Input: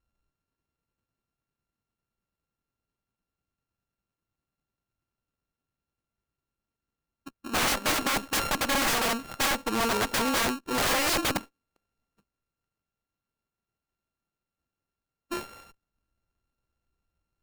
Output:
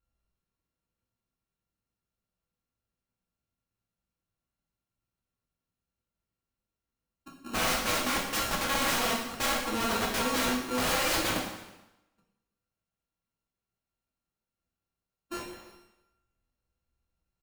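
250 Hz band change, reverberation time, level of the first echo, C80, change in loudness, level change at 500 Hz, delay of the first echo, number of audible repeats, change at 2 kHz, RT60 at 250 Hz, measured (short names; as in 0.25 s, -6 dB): -2.0 dB, 1.0 s, -22.0 dB, 6.5 dB, -2.5 dB, -2.0 dB, 0.322 s, 1, -2.5 dB, 1.0 s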